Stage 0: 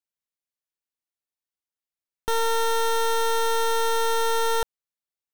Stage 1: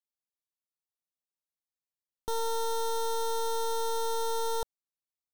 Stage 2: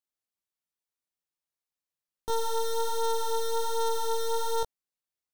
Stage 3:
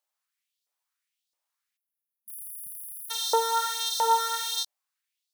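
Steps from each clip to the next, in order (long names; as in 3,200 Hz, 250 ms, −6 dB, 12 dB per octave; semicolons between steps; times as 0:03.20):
flat-topped bell 2,100 Hz −12.5 dB 1.2 octaves; level −7 dB
chorus effect 1.3 Hz, delay 17.5 ms, depth 2.8 ms; level +4 dB
auto-filter high-pass saw up 1.5 Hz 560–4,600 Hz; time-frequency box erased 0:01.77–0:03.11, 220–9,600 Hz; level +6 dB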